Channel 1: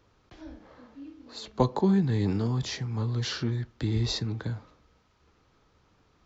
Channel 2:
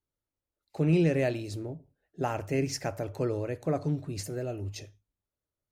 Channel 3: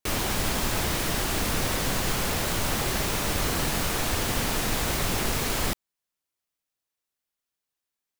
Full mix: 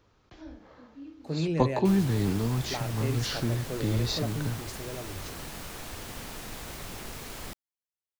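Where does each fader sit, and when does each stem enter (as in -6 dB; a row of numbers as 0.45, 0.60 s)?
-0.5, -5.5, -13.5 dB; 0.00, 0.50, 1.80 s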